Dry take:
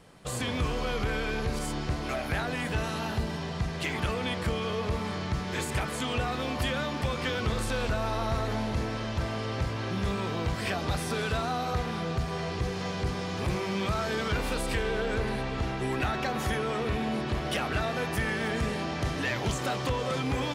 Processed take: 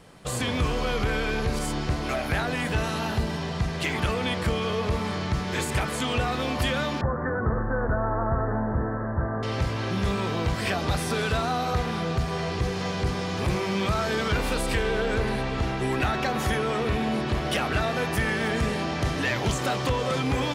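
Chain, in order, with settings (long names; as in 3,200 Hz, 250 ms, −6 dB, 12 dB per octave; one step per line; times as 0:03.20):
0:07.01–0:09.43: Butterworth low-pass 1,800 Hz 96 dB per octave
level +4 dB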